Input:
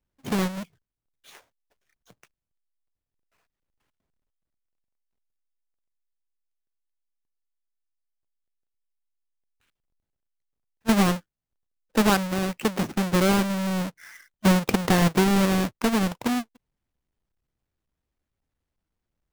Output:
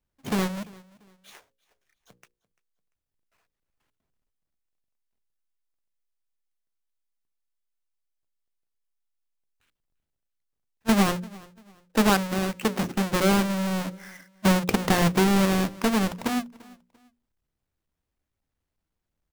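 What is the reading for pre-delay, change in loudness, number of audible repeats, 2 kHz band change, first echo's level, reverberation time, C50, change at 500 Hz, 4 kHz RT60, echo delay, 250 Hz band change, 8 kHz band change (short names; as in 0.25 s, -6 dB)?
none, -0.5 dB, 2, 0.0 dB, -23.0 dB, none, none, -0.5 dB, none, 0.343 s, -1.0 dB, 0.0 dB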